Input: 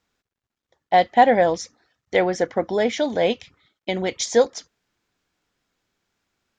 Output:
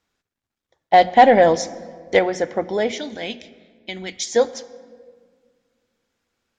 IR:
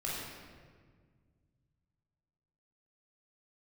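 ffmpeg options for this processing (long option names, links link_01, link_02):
-filter_complex "[0:a]bandreject=frequency=60:width_type=h:width=6,bandreject=frequency=120:width_type=h:width=6,bandreject=frequency=180:width_type=h:width=6,bandreject=frequency=240:width_type=h:width=6,asettb=1/sr,asplit=3[link_01][link_02][link_03];[link_01]atrim=end=0.934[link_04];[link_02]atrim=start=0.93:end=2.19,asetpts=PTS-STARTPTS,afade=type=in:duration=0.004:curve=qsin,afade=type=out:start_time=1.256:duration=0.004:curve=qsin,acontrast=38[link_05];[link_03]atrim=start=2.186[link_06];[link_04][link_05]acrossfade=duration=0.004:curve1=hsin:curve2=qsin[link_07];[link_07][link_06]acrossfade=duration=0.004:curve1=qsin:curve2=hsin,asettb=1/sr,asplit=3[link_08][link_09][link_10];[link_08]atrim=end=2.914[link_11];[link_09]atrim=start=2.91:end=4.36,asetpts=PTS-STARTPTS,afade=type=in:duration=0.004:curve=qsin,afade=type=out:start_time=1.446:duration=0.004:curve=qsin,equalizer=frequency=125:width_type=o:width=1:gain=-11,equalizer=frequency=500:width_type=o:width=1:gain=-12,equalizer=frequency=1000:width_type=o:width=1:gain=-8[link_12];[link_10]atrim=start=4.356[link_13];[link_11][link_12]acrossfade=duration=0.004:curve1=hsin:curve2=qsin[link_14];[link_14][link_13]acrossfade=duration=0.004:curve1=qsin:curve2=hsin,asplit=2[link_15][link_16];[1:a]atrim=start_sample=2205,asetrate=41454,aresample=44100,adelay=25[link_17];[link_16][link_17]afir=irnorm=-1:irlink=0,volume=-20.5dB[link_18];[link_15][link_18]amix=inputs=2:normalize=0" -ar 48000 -c:a libmp3lame -b:a 64k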